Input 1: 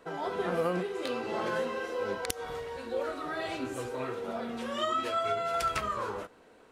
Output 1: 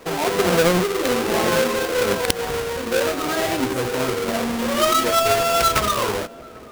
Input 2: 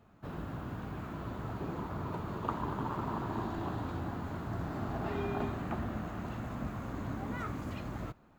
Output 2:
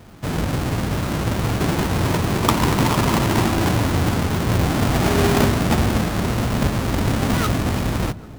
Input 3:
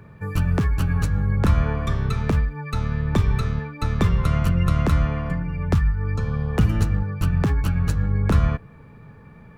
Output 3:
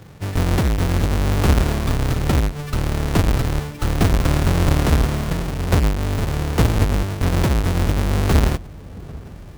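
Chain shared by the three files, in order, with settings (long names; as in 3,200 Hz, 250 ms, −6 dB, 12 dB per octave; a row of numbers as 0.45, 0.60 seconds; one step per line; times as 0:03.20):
each half-wave held at its own peak
feedback echo with a low-pass in the loop 793 ms, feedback 78%, low-pass 920 Hz, level −21.5 dB
loudness normalisation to −20 LKFS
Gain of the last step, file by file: +9.0, +13.5, −2.0 decibels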